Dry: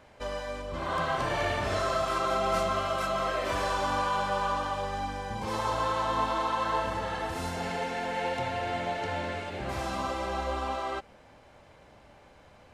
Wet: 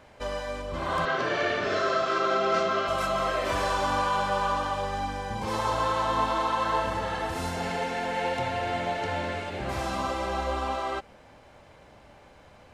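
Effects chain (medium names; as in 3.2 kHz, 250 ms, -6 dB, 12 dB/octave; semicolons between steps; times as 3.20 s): 1.05–2.88 s: cabinet simulation 180–6100 Hz, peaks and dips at 410 Hz +7 dB, 890 Hz -9 dB, 1.5 kHz +5 dB; trim +2.5 dB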